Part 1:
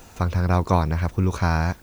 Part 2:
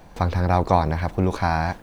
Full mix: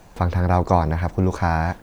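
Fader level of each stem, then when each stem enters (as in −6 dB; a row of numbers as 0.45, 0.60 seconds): −8.5, −1.5 decibels; 0.00, 0.00 seconds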